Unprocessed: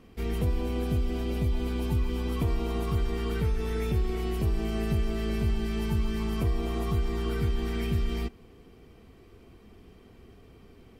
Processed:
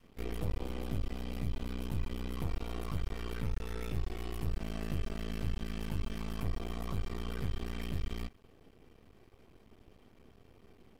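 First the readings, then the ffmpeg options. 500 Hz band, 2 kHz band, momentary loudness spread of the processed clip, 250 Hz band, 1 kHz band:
-12.0 dB, -7.0 dB, 2 LU, -10.0 dB, -8.0 dB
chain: -af "adynamicequalizer=threshold=0.00631:dfrequency=350:dqfactor=0.82:tfrequency=350:tqfactor=0.82:attack=5:release=100:ratio=0.375:range=3:mode=cutabove:tftype=bell,aeval=exprs='max(val(0),0)':c=same,volume=0.668"

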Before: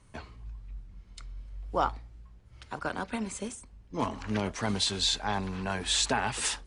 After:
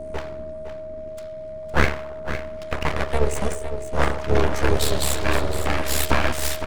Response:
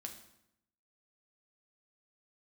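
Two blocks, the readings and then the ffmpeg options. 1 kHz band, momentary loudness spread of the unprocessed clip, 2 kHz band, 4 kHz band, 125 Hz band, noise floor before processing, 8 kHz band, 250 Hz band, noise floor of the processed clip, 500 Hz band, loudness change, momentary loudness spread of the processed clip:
+6.0 dB, 21 LU, +10.0 dB, 0.0 dB, +12.0 dB, -55 dBFS, +3.5 dB, +5.5 dB, -34 dBFS, +12.5 dB, +6.0 dB, 13 LU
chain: -filter_complex "[0:a]asplit=2[s0][s1];[1:a]atrim=start_sample=2205,lowpass=2700[s2];[s1][s2]afir=irnorm=-1:irlink=0,volume=1.5[s3];[s0][s3]amix=inputs=2:normalize=0,adynamicequalizer=threshold=0.0112:dfrequency=1300:dqfactor=1.1:tfrequency=1300:tqfactor=1.1:attack=5:release=100:ratio=0.375:range=2:mode=cutabove:tftype=bell,acrossover=split=410|2000[s4][s5][s6];[s4]acompressor=mode=upward:threshold=0.0224:ratio=2.5[s7];[s7][s5][s6]amix=inputs=3:normalize=0,highpass=f=85:w=0.5412,highpass=f=85:w=1.3066,acontrast=86,aeval=exprs='val(0)*sin(2*PI*36*n/s)':c=same,asuperstop=centerf=2700:order=20:qfactor=5.7,equalizer=f=230:t=o:w=0.77:g=2.5,aeval=exprs='abs(val(0))':c=same,aecho=1:1:510:0.299,aeval=exprs='val(0)+0.0178*sin(2*PI*630*n/s)':c=same,volume=1.41"

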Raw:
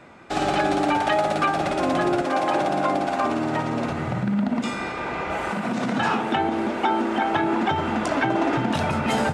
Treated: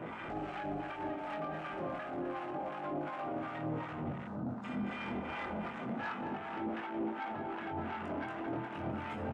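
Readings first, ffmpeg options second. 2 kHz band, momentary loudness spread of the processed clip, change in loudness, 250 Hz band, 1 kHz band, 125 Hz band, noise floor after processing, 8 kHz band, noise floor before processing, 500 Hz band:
-16.0 dB, 2 LU, -16.0 dB, -15.0 dB, -17.0 dB, -14.0 dB, -43 dBFS, under -30 dB, -30 dBFS, -16.0 dB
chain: -filter_complex "[0:a]aecho=1:1:230|425.5|591.7|732.9|853:0.631|0.398|0.251|0.158|0.1,acompressor=threshold=0.0224:ratio=6,alimiter=level_in=3.16:limit=0.0631:level=0:latency=1:release=450,volume=0.316,flanger=delay=18.5:depth=6.2:speed=0.29,afwtdn=0.002,asoftclip=type=tanh:threshold=0.0119,acrossover=split=870[s0][s1];[s0]aeval=exprs='val(0)*(1-0.7/2+0.7/2*cos(2*PI*2.7*n/s))':c=same[s2];[s1]aeval=exprs='val(0)*(1-0.7/2-0.7/2*cos(2*PI*2.7*n/s))':c=same[s3];[s2][s3]amix=inputs=2:normalize=0,volume=3.76"

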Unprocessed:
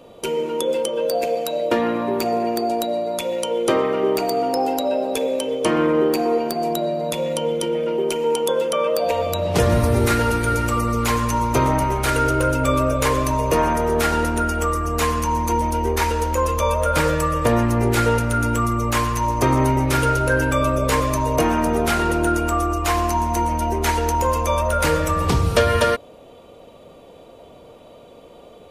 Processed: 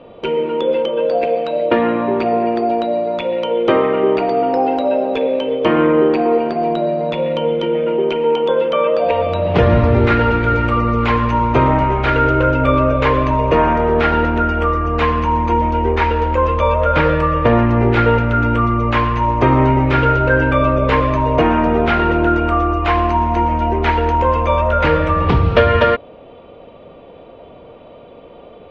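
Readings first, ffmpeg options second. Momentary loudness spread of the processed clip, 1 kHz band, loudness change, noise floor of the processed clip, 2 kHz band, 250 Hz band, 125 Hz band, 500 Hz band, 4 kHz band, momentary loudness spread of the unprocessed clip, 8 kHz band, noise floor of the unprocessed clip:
4 LU, +5.0 dB, +5.0 dB, -40 dBFS, +5.0 dB, +5.0 dB, +5.0 dB, +5.0 dB, 0.0 dB, 4 LU, under -20 dB, -45 dBFS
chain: -af "lowpass=f=3100:w=0.5412,lowpass=f=3100:w=1.3066,volume=1.78"

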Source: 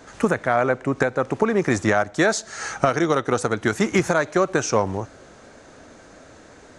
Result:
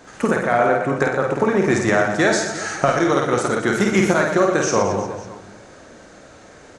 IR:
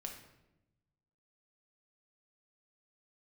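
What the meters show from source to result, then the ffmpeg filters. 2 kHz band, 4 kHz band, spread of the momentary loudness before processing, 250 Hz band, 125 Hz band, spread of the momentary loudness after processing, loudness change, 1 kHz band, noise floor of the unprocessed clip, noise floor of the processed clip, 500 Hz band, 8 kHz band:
+3.5 dB, +3.0 dB, 4 LU, +3.0 dB, +2.0 dB, 5 LU, +3.0 dB, +3.0 dB, -47 dBFS, -45 dBFS, +3.0 dB, +3.0 dB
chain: -filter_complex "[0:a]aecho=1:1:50|120|218|355.2|547.3:0.631|0.398|0.251|0.158|0.1,asplit=2[s0][s1];[1:a]atrim=start_sample=2205,lowshelf=f=74:g=-9.5[s2];[s1][s2]afir=irnorm=-1:irlink=0,volume=1.68[s3];[s0][s3]amix=inputs=2:normalize=0,volume=0.531"

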